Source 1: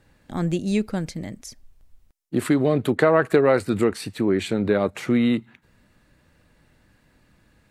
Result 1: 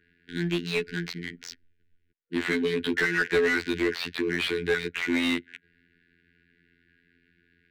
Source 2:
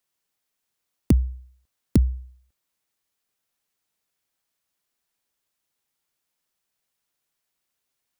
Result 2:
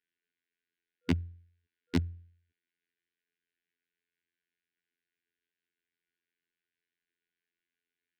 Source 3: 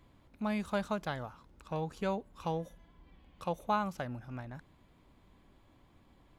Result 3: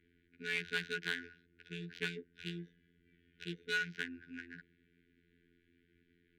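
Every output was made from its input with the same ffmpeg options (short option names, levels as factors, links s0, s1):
-filter_complex "[0:a]afftfilt=real='hypot(re,im)*cos(PI*b)':imag='0':win_size=2048:overlap=0.75,acrossover=split=320|1100|4800[s0][s1][s2][s3];[s2]crystalizer=i=10:c=0[s4];[s0][s1][s4][s3]amix=inputs=4:normalize=0,adynamicsmooth=sensitivity=7:basefreq=1100,afftfilt=real='re*(1-between(b*sr/4096,490,1400))':imag='im*(1-between(b*sr/4096,490,1400))':win_size=4096:overlap=0.75,asplit=2[s5][s6];[s6]highpass=f=720:p=1,volume=11.2,asoftclip=type=tanh:threshold=0.562[s7];[s5][s7]amix=inputs=2:normalize=0,lowpass=f=2200:p=1,volume=0.501,volume=0.398"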